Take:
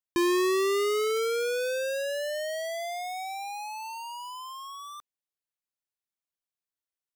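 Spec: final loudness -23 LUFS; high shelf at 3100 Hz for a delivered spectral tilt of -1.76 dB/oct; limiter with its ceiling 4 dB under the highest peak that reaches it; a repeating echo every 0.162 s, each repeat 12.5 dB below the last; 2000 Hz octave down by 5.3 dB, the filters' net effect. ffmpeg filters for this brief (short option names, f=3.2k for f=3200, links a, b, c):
-af "equalizer=f=2k:t=o:g=-8.5,highshelf=f=3.1k:g=4.5,alimiter=limit=-24dB:level=0:latency=1,aecho=1:1:162|324|486:0.237|0.0569|0.0137,volume=8dB"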